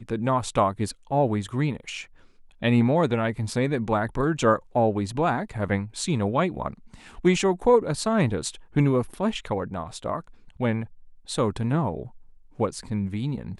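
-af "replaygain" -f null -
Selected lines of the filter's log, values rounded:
track_gain = +5.4 dB
track_peak = 0.293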